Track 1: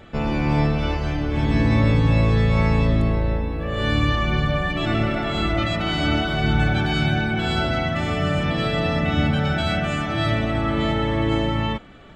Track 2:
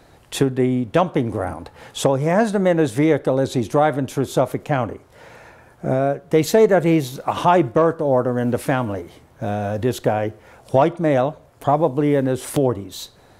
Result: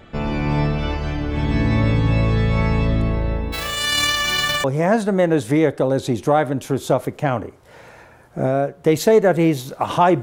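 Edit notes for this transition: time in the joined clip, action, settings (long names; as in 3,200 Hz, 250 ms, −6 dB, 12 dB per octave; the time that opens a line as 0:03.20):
track 1
0:03.52–0:04.64: spectral envelope flattened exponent 0.3
0:04.64: continue with track 2 from 0:02.11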